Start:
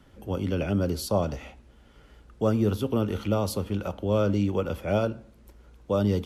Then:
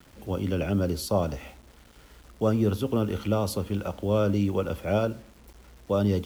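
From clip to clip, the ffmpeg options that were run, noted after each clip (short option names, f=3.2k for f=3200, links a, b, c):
-af "acrusher=bits=8:mix=0:aa=0.000001"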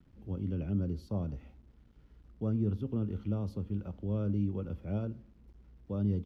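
-af "firequalizer=gain_entry='entry(160,0);entry(580,-14);entry(5600,-21);entry(8000,-28)':delay=0.05:min_phase=1,volume=-4.5dB"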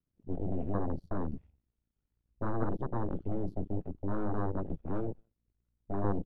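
-filter_complex "[0:a]asplit=2[a][b];[b]adelay=204.1,volume=-20dB,highshelf=f=4k:g=-4.59[c];[a][c]amix=inputs=2:normalize=0,aeval=exprs='0.1*(cos(1*acos(clip(val(0)/0.1,-1,1)))-cos(1*PI/2))+0.0355*(cos(3*acos(clip(val(0)/0.1,-1,1)))-cos(3*PI/2))+0.00447*(cos(7*acos(clip(val(0)/0.1,-1,1)))-cos(7*PI/2))+0.0282*(cos(8*acos(clip(val(0)/0.1,-1,1)))-cos(8*PI/2))':c=same,afwtdn=0.0158"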